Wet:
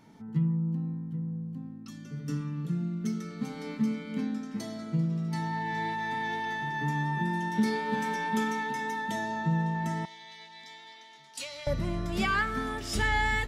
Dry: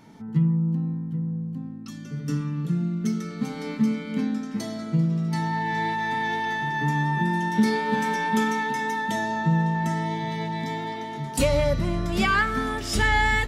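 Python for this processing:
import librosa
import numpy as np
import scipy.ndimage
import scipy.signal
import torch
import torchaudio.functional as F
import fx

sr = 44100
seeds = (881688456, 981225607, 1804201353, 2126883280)

y = fx.bandpass_q(x, sr, hz=4500.0, q=0.95, at=(10.05, 11.67))
y = y * librosa.db_to_amplitude(-6.0)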